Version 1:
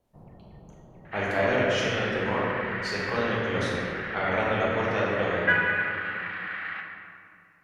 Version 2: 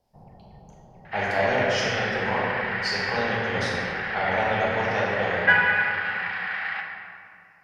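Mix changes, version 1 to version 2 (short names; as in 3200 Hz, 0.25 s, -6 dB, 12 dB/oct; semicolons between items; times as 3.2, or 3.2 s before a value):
second sound +5.0 dB; master: add thirty-one-band EQ 315 Hz -8 dB, 800 Hz +9 dB, 1250 Hz -5 dB, 5000 Hz +12 dB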